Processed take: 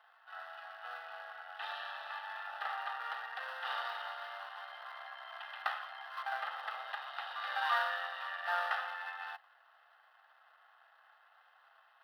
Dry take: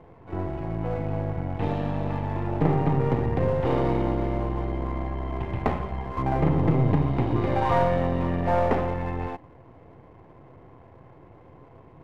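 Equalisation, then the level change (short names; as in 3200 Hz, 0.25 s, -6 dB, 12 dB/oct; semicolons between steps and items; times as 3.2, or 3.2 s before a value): steep high-pass 990 Hz 36 dB/oct; fixed phaser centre 1500 Hz, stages 8; +4.0 dB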